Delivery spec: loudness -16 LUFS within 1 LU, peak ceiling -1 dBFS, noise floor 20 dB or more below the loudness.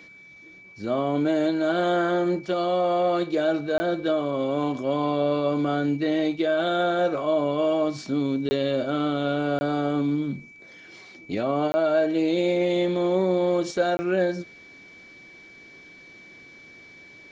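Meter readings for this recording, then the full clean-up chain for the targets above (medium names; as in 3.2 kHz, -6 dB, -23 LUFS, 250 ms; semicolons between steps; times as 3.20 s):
dropouts 5; longest dropout 20 ms; steady tone 2.3 kHz; tone level -46 dBFS; loudness -24.5 LUFS; peak level -12.0 dBFS; loudness target -16.0 LUFS
-> interpolate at 3.78/8.49/9.59/11.72/13.97 s, 20 ms; band-stop 2.3 kHz, Q 30; trim +8.5 dB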